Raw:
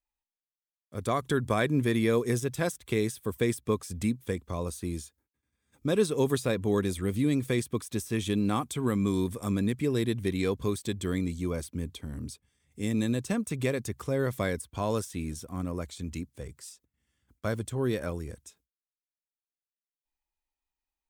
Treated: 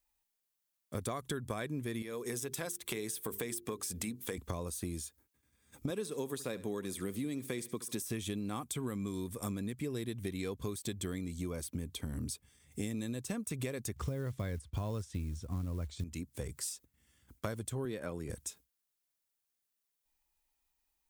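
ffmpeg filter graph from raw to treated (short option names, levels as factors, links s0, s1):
-filter_complex "[0:a]asettb=1/sr,asplit=3[s0][s1][s2];[s0]atrim=end=2.024[s3];[s1]atrim=start=2.02:end=4.38,asetpts=PTS-STARTPTS,afade=t=in:d=0.004:c=qsin,afade=t=out:st=2.356:d=0.004:c=qsin,highpass=f=290:p=1,acompressor=threshold=0.0126:ratio=2:attack=3.2:release=140:knee=1:detection=peak,bandreject=f=50:t=h:w=6,bandreject=f=100:t=h:w=6,bandreject=f=150:t=h:w=6,bandreject=f=200:t=h:w=6,bandreject=f=250:t=h:w=6,bandreject=f=300:t=h:w=6,bandreject=f=350:t=h:w=6,bandreject=f=400:t=h:w=6,bandreject=f=450:t=h:w=6[s4];[s2]atrim=start=4.376[s5];[s3][s4]acrossfade=d=0.004:c1=hsin:c2=qsin[s6];[s6][s5]acrossfade=d=0.004:c1=qsin:c2=hsin,asettb=1/sr,asplit=3[s7][s8][s9];[s7]atrim=end=5.904[s10];[s8]atrim=start=5.9:end=8.02,asetpts=PTS-STARTPTS,afade=t=in:d=0.004:c=qsin,afade=t=out:st=2.116:d=0.004:c=qsin,highpass=160,aecho=1:1:71|142|213:0.112|0.0348|0.0108,atrim=end_sample=93492[s11];[s9]atrim=start=8.016[s12];[s10][s11]acrossfade=d=0.004:c1=hsin:c2=qsin[s13];[s13][s12]acrossfade=d=0.004:c1=qsin:c2=hsin,asettb=1/sr,asplit=3[s14][s15][s16];[s14]atrim=end=13.964[s17];[s15]atrim=start=13.96:end=16.04,asetpts=PTS-STARTPTS,afade=t=in:d=0.004:c=qsin,afade=t=out:st=2.076:d=0.004:c=qsin,lowpass=6000,equalizer=f=75:t=o:w=2.1:g=14.5,acrusher=bits=8:mode=log:mix=0:aa=0.000001[s18];[s16]atrim=start=16.036[s19];[s17][s18]acrossfade=d=0.004:c1=hsin:c2=qsin[s20];[s20][s19]acrossfade=d=0.004:c1=qsin:c2=hsin,asettb=1/sr,asplit=3[s21][s22][s23];[s21]atrim=end=17.854[s24];[s22]atrim=start=17.85:end=18.3,asetpts=PTS-STARTPTS,afade=t=in:d=0.004:c=qsin,afade=t=out:st=0.446:d=0.004:c=qsin,highpass=120,highshelf=f=8100:g=-11,bandreject=f=5800:w=5.6[s25];[s23]atrim=start=18.296[s26];[s24][s25]acrossfade=d=0.004:c1=hsin:c2=qsin[s27];[s27][s26]acrossfade=d=0.004:c1=qsin:c2=hsin,highshelf=f=7100:g=8,acompressor=threshold=0.01:ratio=12,volume=1.88"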